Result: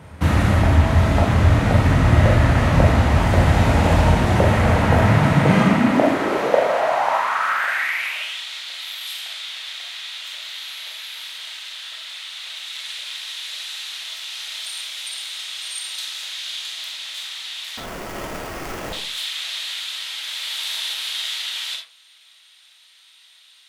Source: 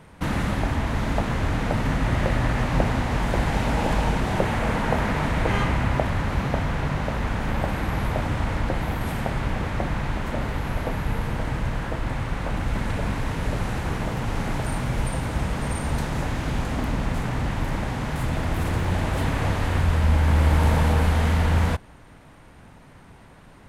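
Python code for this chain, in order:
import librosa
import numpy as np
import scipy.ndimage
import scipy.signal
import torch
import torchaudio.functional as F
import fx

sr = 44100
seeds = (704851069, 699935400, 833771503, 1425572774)

y = fx.filter_sweep_highpass(x, sr, from_hz=79.0, to_hz=3600.0, start_s=4.85, end_s=8.43, q=4.1)
y = fx.sample_hold(y, sr, seeds[0], rate_hz=3900.0, jitter_pct=20, at=(17.77, 18.93))
y = fx.rev_freeverb(y, sr, rt60_s=0.41, hf_ratio=0.5, predelay_ms=0, drr_db=1.0)
y = F.gain(torch.from_numpy(y), 3.5).numpy()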